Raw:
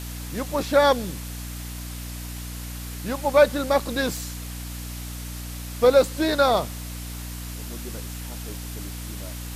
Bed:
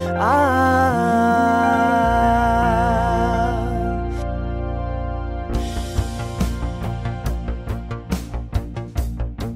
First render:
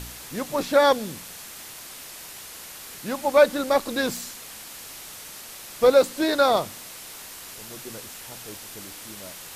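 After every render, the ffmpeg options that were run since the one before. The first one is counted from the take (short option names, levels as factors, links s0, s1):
-af "bandreject=f=60:t=h:w=4,bandreject=f=120:t=h:w=4,bandreject=f=180:t=h:w=4,bandreject=f=240:t=h:w=4,bandreject=f=300:t=h:w=4"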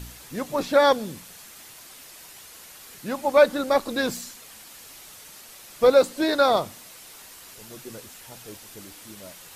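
-af "afftdn=nr=6:nf=-41"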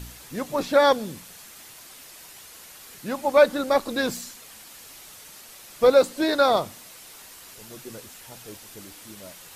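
-af anull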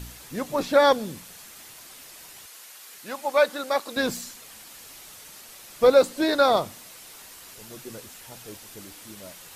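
-filter_complex "[0:a]asettb=1/sr,asplit=3[s0][s1][s2];[s0]atrim=end=2.464[s3];[s1]atrim=start=2.46:end=3.97,asetpts=PTS-STARTPTS,afade=t=in:d=0.004:c=qsin,afade=t=out:st=1.506:d=0.004:c=qsin,highpass=f=780:p=1[s4];[s2]atrim=start=3.966[s5];[s3][s4]acrossfade=d=0.004:c1=hsin:c2=qsin[s6];[s6][s5]acrossfade=d=0.004:c1=qsin:c2=hsin"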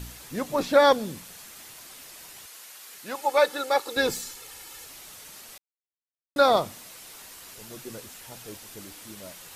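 -filter_complex "[0:a]asettb=1/sr,asplit=3[s0][s1][s2];[s0]atrim=end=3.154[s3];[s1]atrim=start=3.15:end=4.85,asetpts=PTS-STARTPTS,afade=t=in:d=0.004:c=qsin,afade=t=out:st=1.696:d=0.004:c=qsin,aecho=1:1:2.3:0.65,atrim=end_sample=74970[s4];[s2]atrim=start=4.846[s5];[s3][s4]acrossfade=d=0.004:c1=hsin:c2=qsin[s6];[s6][s5]acrossfade=d=0.004:c1=qsin:c2=hsin,asplit=3[s7][s8][s9];[s7]atrim=end=5.58,asetpts=PTS-STARTPTS,afade=t=out:st=5.576:d=0.004:c=hsin[s10];[s8]atrim=start=5.58:end=6.36,asetpts=PTS-STARTPTS,volume=0[s11];[s9]atrim=start=6.36,asetpts=PTS-STARTPTS,afade=t=in:d=0.004:c=hsin[s12];[s10][s11][s12]concat=n=3:v=0:a=1"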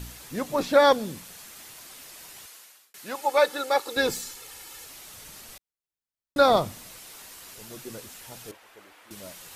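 -filter_complex "[0:a]asettb=1/sr,asplit=3[s0][s1][s2];[s0]atrim=end=5.144[s3];[s1]atrim=start=5.14:end=6.99,asetpts=PTS-STARTPTS,afade=t=in:d=0.004:c=qsin,afade=t=out:st=1.846:d=0.004:c=qsin,lowshelf=f=150:g=11[s4];[s2]atrim=start=6.986[s5];[s3][s4]acrossfade=d=0.004:c1=hsin:c2=qsin[s6];[s6][s5]acrossfade=d=0.004:c1=qsin:c2=hsin,asettb=1/sr,asplit=3[s7][s8][s9];[s7]atrim=end=8.514[s10];[s8]atrim=start=8.51:end=9.11,asetpts=PTS-STARTPTS,afade=t=in:d=0.004:c=qsin,afade=t=out:st=0.596:d=0.004:c=qsin,acrossover=split=450 2700:gain=0.112 1 0.141[s11][s12][s13];[s11][s12][s13]amix=inputs=3:normalize=0[s14];[s9]atrim=start=9.106[s15];[s10][s14]acrossfade=d=0.004:c1=hsin:c2=qsin[s16];[s16][s15]acrossfade=d=0.004:c1=qsin:c2=hsin,asplit=2[s17][s18];[s17]atrim=end=2.94,asetpts=PTS-STARTPTS,afade=t=out:st=2.44:d=0.5[s19];[s18]atrim=start=2.94,asetpts=PTS-STARTPTS,afade=t=in:d=0.004:c=hsin[s20];[s19][s20]concat=n=2:v=0:a=1"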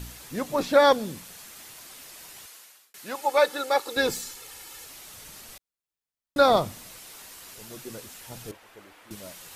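-filter_complex "[0:a]asettb=1/sr,asplit=3[s0][s1][s2];[s0]atrim=end=8.304[s3];[s1]atrim=start=8.3:end=9.16,asetpts=PTS-STARTPTS,afade=t=in:d=0.004:c=qsin,afade=t=out:st=0.856:d=0.004:c=qsin,lowshelf=f=270:g=8.5[s4];[s2]atrim=start=9.156[s5];[s3][s4]acrossfade=d=0.004:c1=hsin:c2=qsin[s6];[s6][s5]acrossfade=d=0.004:c1=qsin:c2=hsin"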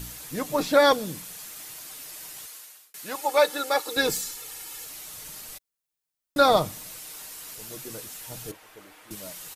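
-af "highshelf=f=6700:g=7,aecho=1:1:6.5:0.33"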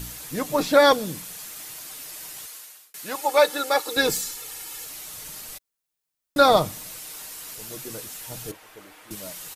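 -af "volume=1.33"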